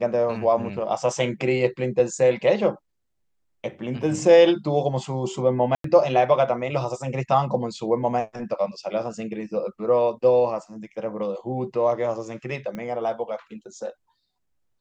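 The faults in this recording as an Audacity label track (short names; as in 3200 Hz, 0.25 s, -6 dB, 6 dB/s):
5.750000	5.840000	gap 93 ms
12.750000	12.750000	pop -21 dBFS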